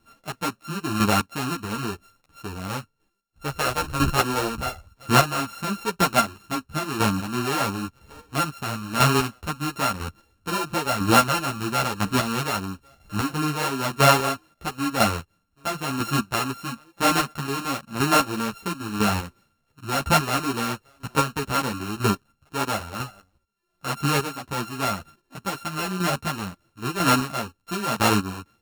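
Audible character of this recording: a buzz of ramps at a fixed pitch in blocks of 32 samples; chopped level 1 Hz, depth 60%, duty 20%; a shimmering, thickened sound

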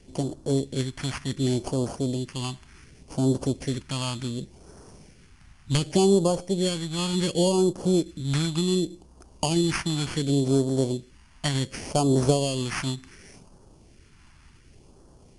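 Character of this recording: aliases and images of a low sample rate 3800 Hz, jitter 0%; phasing stages 2, 0.68 Hz, lowest notch 450–2100 Hz; MP3

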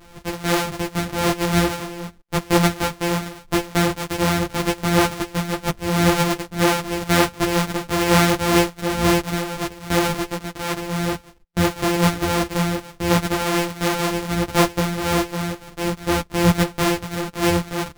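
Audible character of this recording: a buzz of ramps at a fixed pitch in blocks of 256 samples; tremolo triangle 2 Hz, depth 35%; a shimmering, thickened sound

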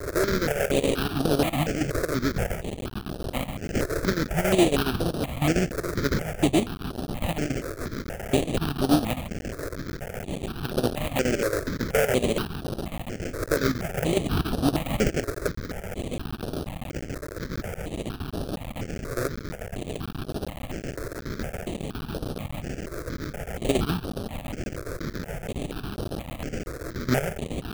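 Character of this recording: a quantiser's noise floor 6-bit, dither triangular; chopped level 7.2 Hz, depth 65%, duty 75%; aliases and images of a low sample rate 1000 Hz, jitter 20%; notches that jump at a steady rate 4.2 Hz 800–7200 Hz

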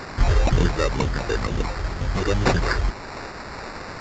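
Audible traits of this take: a quantiser's noise floor 6-bit, dither triangular; phasing stages 6, 2.1 Hz, lowest notch 190–1100 Hz; aliases and images of a low sample rate 3200 Hz, jitter 0%; µ-law

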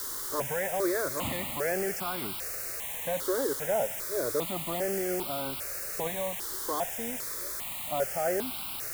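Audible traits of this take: a quantiser's noise floor 6-bit, dither triangular; notches that jump at a steady rate 2.5 Hz 680–1800 Hz

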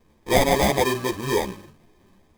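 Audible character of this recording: aliases and images of a low sample rate 1400 Hz, jitter 0%; a shimmering, thickened sound

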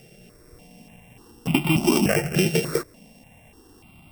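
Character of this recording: a buzz of ramps at a fixed pitch in blocks of 16 samples; notches that jump at a steady rate 3.4 Hz 280–1700 Hz

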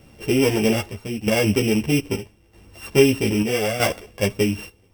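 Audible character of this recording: a buzz of ramps at a fixed pitch in blocks of 16 samples; chopped level 0.79 Hz, depth 60%, duty 70%; a shimmering, thickened sound

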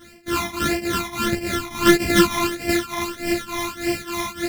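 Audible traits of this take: a buzz of ramps at a fixed pitch in blocks of 128 samples; phasing stages 12, 1.6 Hz, lowest notch 480–1200 Hz; tremolo triangle 3.4 Hz, depth 90%; a shimmering, thickened sound

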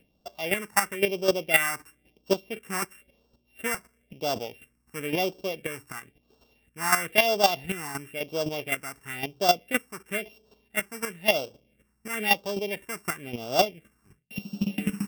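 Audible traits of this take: a buzz of ramps at a fixed pitch in blocks of 16 samples; phasing stages 4, 0.98 Hz, lowest notch 550–2000 Hz; chopped level 3.9 Hz, depth 65%, duty 10%

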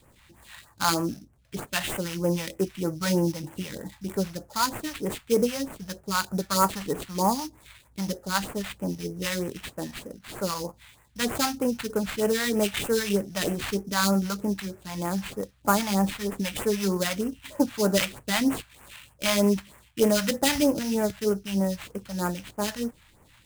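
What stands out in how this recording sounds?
aliases and images of a low sample rate 5700 Hz, jitter 20%; phasing stages 2, 3.2 Hz, lowest notch 340–3700 Hz

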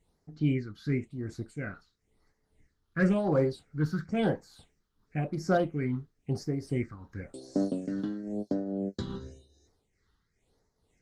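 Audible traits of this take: tremolo triangle 2.4 Hz, depth 65%; phasing stages 6, 0.96 Hz, lowest notch 600–2800 Hz; Opus

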